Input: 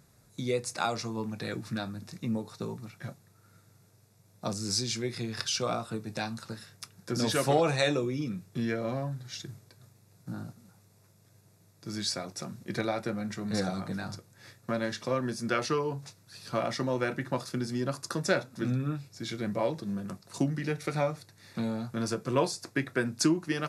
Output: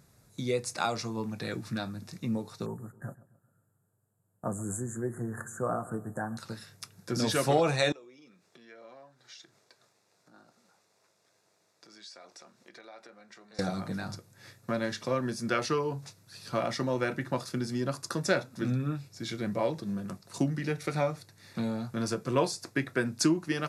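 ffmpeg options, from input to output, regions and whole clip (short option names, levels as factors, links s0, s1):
-filter_complex "[0:a]asettb=1/sr,asplit=3[s0][s1][s2];[s0]atrim=end=2.664[s3];[s1]atrim=start=2.66:end=6.37,asetpts=PTS-STARTPTS,afade=t=in:d=0.004:c=qsin,afade=t=out:st=3.706:d=0.004:c=qsin,agate=range=0.224:threshold=0.00355:ratio=16:release=100:detection=peak,asuperstop=centerf=3600:order=20:qfactor=0.69,asplit=2[s4][s5];[s5]adelay=133,lowpass=f=1500:p=1,volume=0.133,asplit=2[s6][s7];[s7]adelay=133,lowpass=f=1500:p=1,volume=0.47,asplit=2[s8][s9];[s9]adelay=133,lowpass=f=1500:p=1,volume=0.47,asplit=2[s10][s11];[s11]adelay=133,lowpass=f=1500:p=1,volume=0.47[s12];[s4][s6][s8][s10][s12]amix=inputs=5:normalize=0,atrim=end_sample=163611[s13];[s2]atrim=start=6.366[s14];[s3][s13]acrossfade=d=0.004:c1=hsin:c2=qsin[s15];[s15][s14]acrossfade=d=0.004:c1=qsin:c2=hsin,asettb=1/sr,asplit=3[s16][s17][s18];[s16]atrim=end=7.924[s19];[s17]atrim=start=7.92:end=13.59,asetpts=PTS-STARTPTS,afade=t=in:d=0.004:c=qsin,afade=t=out:st=5.666:d=0.004:c=qsin,acompressor=threshold=0.00562:ratio=5:attack=3.2:release=140:knee=1:detection=peak,highpass=470,lowpass=6700[s20];[s18]atrim=start=13.586[s21];[s19][s20]acrossfade=d=0.004:c1=hsin:c2=qsin[s22];[s22][s21]acrossfade=d=0.004:c1=qsin:c2=hsin"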